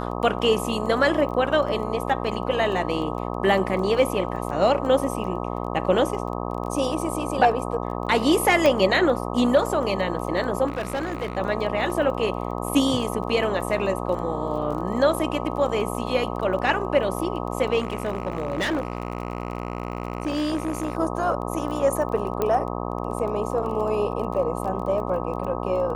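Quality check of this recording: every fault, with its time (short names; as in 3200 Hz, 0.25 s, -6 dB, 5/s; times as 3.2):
buzz 60 Hz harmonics 21 -29 dBFS
crackle 19/s -32 dBFS
8.66 pop -8 dBFS
10.66–11.38 clipped -23 dBFS
17.78–20.97 clipped -20.5 dBFS
22.42 pop -11 dBFS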